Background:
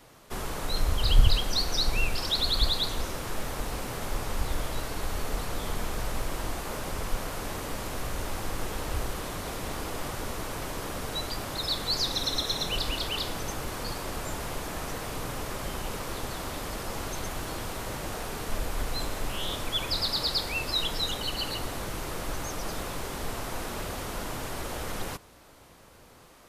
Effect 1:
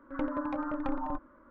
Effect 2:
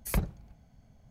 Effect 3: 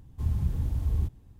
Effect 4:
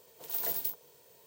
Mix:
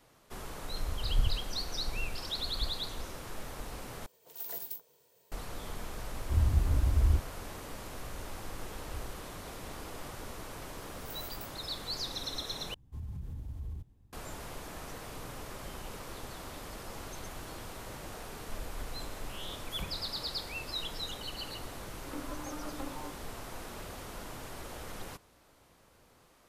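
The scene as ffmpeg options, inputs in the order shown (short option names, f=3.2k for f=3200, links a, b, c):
-filter_complex "[4:a]asplit=2[a][b];[3:a]asplit=2[c][d];[0:a]volume=-9dB[e];[c]aecho=1:1:3.1:0.65[f];[d]alimiter=level_in=0.5dB:limit=-24dB:level=0:latency=1:release=58,volume=-0.5dB[g];[e]asplit=3[h][i][j];[h]atrim=end=4.064[k];[a]atrim=end=1.26,asetpts=PTS-STARTPTS,volume=-7dB[l];[i]atrim=start=5.316:end=12.744[m];[g]atrim=end=1.39,asetpts=PTS-STARTPTS,volume=-9.5dB[n];[j]atrim=start=14.126[o];[f]atrim=end=1.39,asetpts=PTS-STARTPTS,volume=-1dB,afade=t=in:d=0.004:c=hsin,afade=t=out:st=1.386:d=0.004:c=hsin,adelay=6110[p];[b]atrim=end=1.26,asetpts=PTS-STARTPTS,volume=-13.5dB,afade=t=in:d=0.004:c=hsin,afade=t=out:st=1.256:d=0.004:c=hsin,adelay=10760[q];[2:a]atrim=end=1.1,asetpts=PTS-STARTPTS,volume=-14dB,afade=t=in:d=0.004:c=hsin,afade=t=out:st=1.096:d=0.004:c=hsin,adelay=19650[r];[1:a]atrim=end=1.5,asetpts=PTS-STARTPTS,volume=-10dB,afade=t=in:d=0.004:c=hsin,afade=t=out:st=1.496:d=0.004:c=hsin,adelay=21940[s];[k][l]acrossfade=d=0.004:c1=hsin:c2=hsin[t];[t][m]acrossfade=d=0.004:c1=hsin:c2=hsin[u];[u][n]acrossfade=d=0.004:c1=hsin:c2=hsin[v];[v][o]acrossfade=d=0.004:c1=hsin:c2=hsin[w];[w][p][q][r][s]amix=inputs=5:normalize=0"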